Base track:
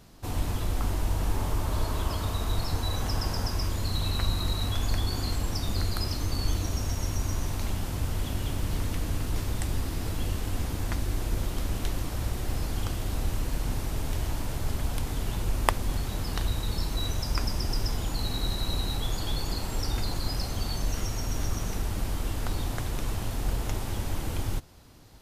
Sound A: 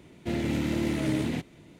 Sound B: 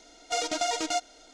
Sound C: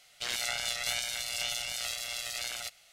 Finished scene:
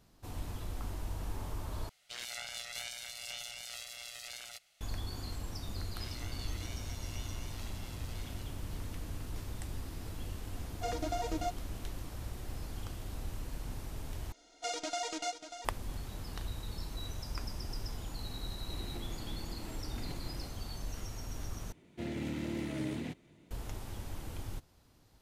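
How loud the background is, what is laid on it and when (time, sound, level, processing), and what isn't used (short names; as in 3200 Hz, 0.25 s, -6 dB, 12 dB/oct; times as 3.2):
base track -11.5 dB
1.89 replace with C -9.5 dB
5.74 add C -16.5 dB + high shelf 8900 Hz -10.5 dB
10.51 add B -9 dB + tilt shelf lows +7.5 dB
14.32 replace with B -8.5 dB + echo 0.59 s -10 dB
18.7 add A -8 dB + negative-ratio compressor -40 dBFS
21.72 replace with A -9.5 dB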